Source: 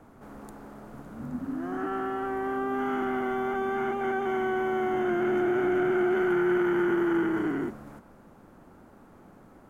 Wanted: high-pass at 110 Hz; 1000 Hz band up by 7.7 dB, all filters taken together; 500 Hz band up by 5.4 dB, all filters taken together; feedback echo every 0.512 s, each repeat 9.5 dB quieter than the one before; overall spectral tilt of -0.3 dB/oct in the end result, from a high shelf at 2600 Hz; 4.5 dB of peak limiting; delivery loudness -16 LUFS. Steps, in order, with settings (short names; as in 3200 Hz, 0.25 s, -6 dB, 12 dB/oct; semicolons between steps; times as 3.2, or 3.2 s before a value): HPF 110 Hz; bell 500 Hz +8 dB; bell 1000 Hz +7 dB; high shelf 2600 Hz +4 dB; limiter -16 dBFS; feedback echo 0.512 s, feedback 33%, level -9.5 dB; gain +8 dB